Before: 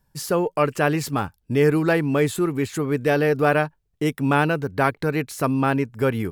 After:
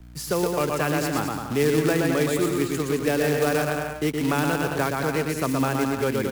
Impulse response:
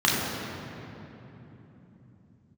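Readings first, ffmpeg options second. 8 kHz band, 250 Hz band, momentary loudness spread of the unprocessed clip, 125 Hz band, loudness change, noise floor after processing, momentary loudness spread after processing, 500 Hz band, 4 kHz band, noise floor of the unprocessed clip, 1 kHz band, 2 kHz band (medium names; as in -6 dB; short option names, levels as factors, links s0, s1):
+4.0 dB, -1.5 dB, 6 LU, -3.5 dB, -2.0 dB, -34 dBFS, 4 LU, -2.0 dB, +2.5 dB, -68 dBFS, -3.0 dB, -2.5 dB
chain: -filter_complex "[0:a]aecho=1:1:120|216|292.8|354.2|403.4:0.631|0.398|0.251|0.158|0.1,aeval=exprs='val(0)+0.00891*(sin(2*PI*60*n/s)+sin(2*PI*2*60*n/s)/2+sin(2*PI*3*60*n/s)/3+sin(2*PI*4*60*n/s)/4+sin(2*PI*5*60*n/s)/5)':c=same,acrossover=split=150|1400[s0][s1][s2];[s0]acompressor=threshold=0.0158:ratio=6[s3];[s3][s1][s2]amix=inputs=3:normalize=0,acrusher=bits=3:mode=log:mix=0:aa=0.000001,acrossover=split=360|3000[s4][s5][s6];[s5]acompressor=threshold=0.1:ratio=6[s7];[s4][s7][s6]amix=inputs=3:normalize=0,volume=0.75"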